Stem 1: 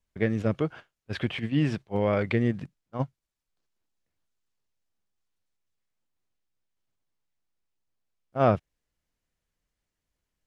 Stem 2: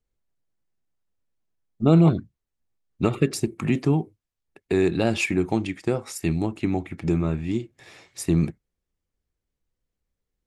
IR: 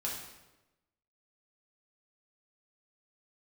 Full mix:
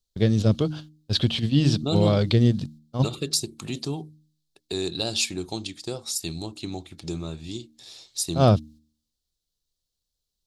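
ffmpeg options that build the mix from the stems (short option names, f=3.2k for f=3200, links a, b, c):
-filter_complex "[0:a]agate=range=-15dB:threshold=-51dB:ratio=16:detection=peak,lowshelf=f=200:g=11,volume=1dB[a];[1:a]equalizer=f=210:t=o:w=1.5:g=-4,volume=-6.5dB[b];[a][b]amix=inputs=2:normalize=0,highshelf=f=2.9k:t=q:w=3:g=11.5,bandreject=f=76.53:t=h:w=4,bandreject=f=153.06:t=h:w=4,bandreject=f=229.59:t=h:w=4,bandreject=f=306.12:t=h:w=4"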